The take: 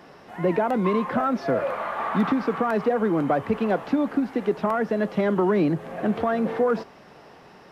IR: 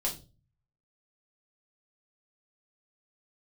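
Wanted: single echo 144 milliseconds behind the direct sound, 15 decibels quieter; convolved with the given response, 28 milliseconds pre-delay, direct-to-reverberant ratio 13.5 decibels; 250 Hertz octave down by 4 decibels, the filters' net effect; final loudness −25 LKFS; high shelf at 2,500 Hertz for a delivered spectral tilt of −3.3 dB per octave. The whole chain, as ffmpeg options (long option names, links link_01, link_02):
-filter_complex "[0:a]equalizer=frequency=250:width_type=o:gain=-5,highshelf=frequency=2500:gain=-3.5,aecho=1:1:144:0.178,asplit=2[link_01][link_02];[1:a]atrim=start_sample=2205,adelay=28[link_03];[link_02][link_03]afir=irnorm=-1:irlink=0,volume=-18dB[link_04];[link_01][link_04]amix=inputs=2:normalize=0,volume=1dB"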